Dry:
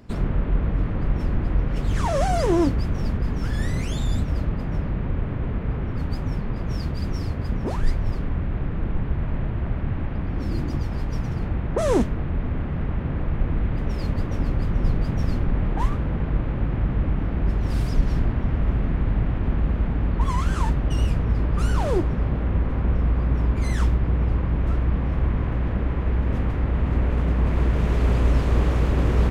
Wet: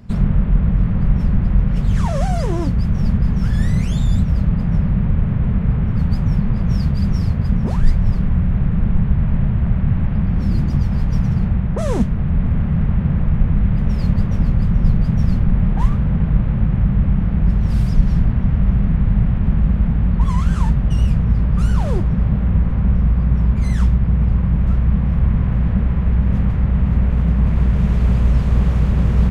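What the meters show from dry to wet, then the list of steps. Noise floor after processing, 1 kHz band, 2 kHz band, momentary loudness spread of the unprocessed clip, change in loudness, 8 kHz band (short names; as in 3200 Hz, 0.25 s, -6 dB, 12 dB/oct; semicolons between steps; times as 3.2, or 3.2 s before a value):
-20 dBFS, -1.0 dB, 0.0 dB, 6 LU, +6.5 dB, n/a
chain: in parallel at +3 dB: vocal rider; on the sum: resonant low shelf 240 Hz +6 dB, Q 3; gain -7.5 dB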